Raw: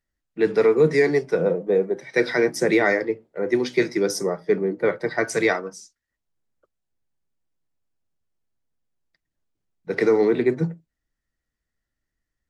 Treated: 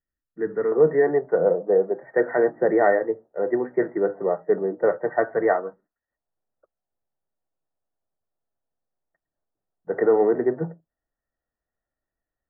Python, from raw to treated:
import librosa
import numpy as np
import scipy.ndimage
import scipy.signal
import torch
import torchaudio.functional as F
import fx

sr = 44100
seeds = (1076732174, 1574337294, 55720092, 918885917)

y = fx.peak_eq(x, sr, hz=720.0, db=fx.steps((0.0, -3.0), (0.72, 12.5)), octaves=1.2)
y = scipy.signal.sosfilt(scipy.signal.cheby1(6, 3, 1900.0, 'lowpass', fs=sr, output='sos'), y)
y = y * 10.0 ** (-5.0 / 20.0)